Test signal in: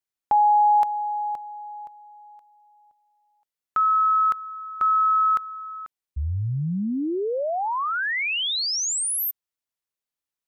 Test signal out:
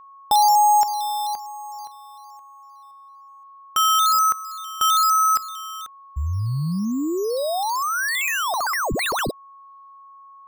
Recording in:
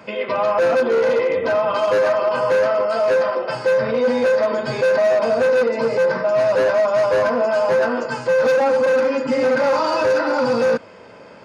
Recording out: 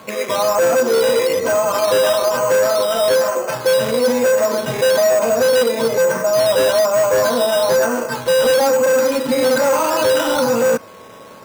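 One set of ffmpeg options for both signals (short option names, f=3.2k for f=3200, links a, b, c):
-af "acrusher=samples=8:mix=1:aa=0.000001:lfo=1:lforange=4.8:lforate=1.1,aeval=exprs='val(0)+0.00562*sin(2*PI*1100*n/s)':c=same,volume=2dB"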